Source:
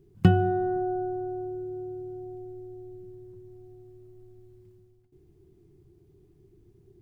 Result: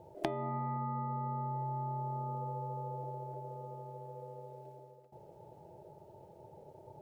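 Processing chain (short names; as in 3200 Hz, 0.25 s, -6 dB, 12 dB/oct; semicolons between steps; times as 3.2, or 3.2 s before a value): compressor 6:1, threshold -38 dBFS, peak gain reduction 23 dB; ring modulator 500 Hz; gain +6 dB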